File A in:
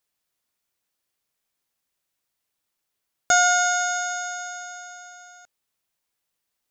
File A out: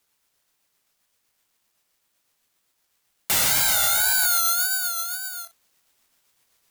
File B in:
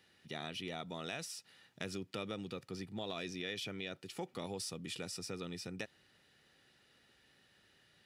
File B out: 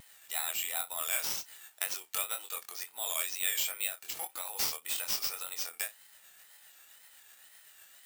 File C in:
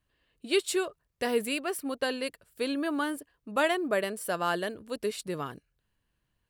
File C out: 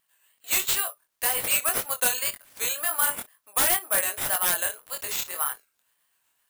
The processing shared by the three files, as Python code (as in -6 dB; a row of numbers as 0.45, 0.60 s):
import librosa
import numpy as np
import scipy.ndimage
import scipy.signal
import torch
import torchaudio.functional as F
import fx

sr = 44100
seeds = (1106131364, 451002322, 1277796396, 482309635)

p1 = x + fx.room_early_taps(x, sr, ms=(23, 59), db=(-4.0, -18.0), dry=0)
p2 = p1 * (1.0 - 0.29 / 2.0 + 0.29 / 2.0 * np.cos(2.0 * np.pi * 7.8 * (np.arange(len(p1)) / sr)))
p3 = scipy.signal.sosfilt(scipy.signal.butter(4, 740.0, 'highpass', fs=sr, output='sos'), p2)
p4 = (np.kron(p3[::4], np.eye(4)[0]) * 4)[:len(p3)]
p5 = fx.rider(p4, sr, range_db=4, speed_s=2.0)
p6 = p4 + (p5 * 10.0 ** (2.0 / 20.0))
p7 = 10.0 ** (-7.0 / 20.0) * (np.abs((p6 / 10.0 ** (-7.0 / 20.0) + 3.0) % 4.0 - 2.0) - 1.0)
p8 = fx.wow_flutter(p7, sr, seeds[0], rate_hz=2.1, depth_cents=100.0)
y = librosa.util.normalize(p8) * 10.0 ** (-9 / 20.0)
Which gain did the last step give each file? -2.0, -1.5, -2.0 dB